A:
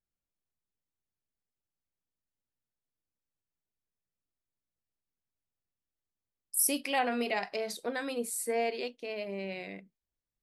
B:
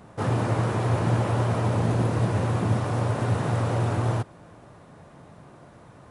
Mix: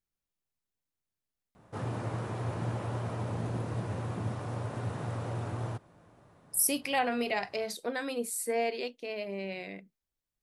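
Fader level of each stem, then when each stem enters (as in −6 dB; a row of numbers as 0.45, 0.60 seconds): +0.5, −11.0 decibels; 0.00, 1.55 seconds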